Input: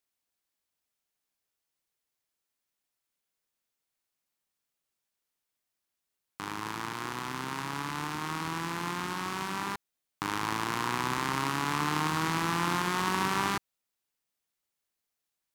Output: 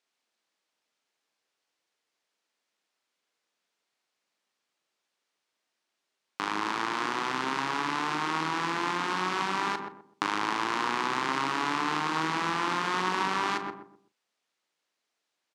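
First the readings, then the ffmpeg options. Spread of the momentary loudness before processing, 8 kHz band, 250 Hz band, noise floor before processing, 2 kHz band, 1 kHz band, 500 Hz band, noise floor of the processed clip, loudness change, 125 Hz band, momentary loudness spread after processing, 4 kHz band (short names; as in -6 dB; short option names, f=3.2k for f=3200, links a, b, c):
8 LU, -3.0 dB, +0.5 dB, under -85 dBFS, +3.0 dB, +3.5 dB, +3.0 dB, -83 dBFS, +2.5 dB, -6.0 dB, 5 LU, +2.5 dB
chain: -filter_complex "[0:a]asplit=2[a][b];[b]adelay=126,lowpass=f=820:p=1,volume=-6dB,asplit=2[c][d];[d]adelay=126,lowpass=f=820:p=1,volume=0.33,asplit=2[e][f];[f]adelay=126,lowpass=f=820:p=1,volume=0.33,asplit=2[g][h];[h]adelay=126,lowpass=f=820:p=1,volume=0.33[i];[c][e][g][i]amix=inputs=4:normalize=0[j];[a][j]amix=inputs=2:normalize=0,acompressor=threshold=-31dB:ratio=6,highpass=270,lowpass=5.5k,asplit=2[k][l];[l]adelay=38,volume=-13dB[m];[k][m]amix=inputs=2:normalize=0,volume=8dB"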